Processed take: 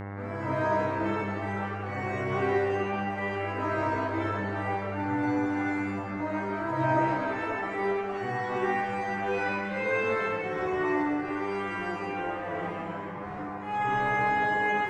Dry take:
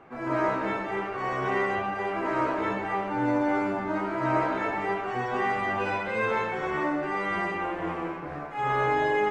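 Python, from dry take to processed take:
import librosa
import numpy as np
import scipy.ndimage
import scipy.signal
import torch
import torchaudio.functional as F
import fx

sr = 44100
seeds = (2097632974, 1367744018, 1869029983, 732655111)

y = fx.room_early_taps(x, sr, ms=(30, 73), db=(-5.5, -14.5))
y = fx.dmg_buzz(y, sr, base_hz=100.0, harmonics=22, level_db=-37.0, tilt_db=-5, odd_only=False)
y = fx.stretch_vocoder_free(y, sr, factor=1.6)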